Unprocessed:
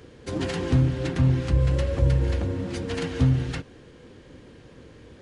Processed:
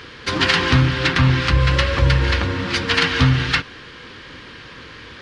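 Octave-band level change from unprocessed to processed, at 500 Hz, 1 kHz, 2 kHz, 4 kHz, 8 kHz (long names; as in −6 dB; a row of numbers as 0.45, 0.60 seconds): +4.5, +16.0, +19.5, +19.5, +10.0 decibels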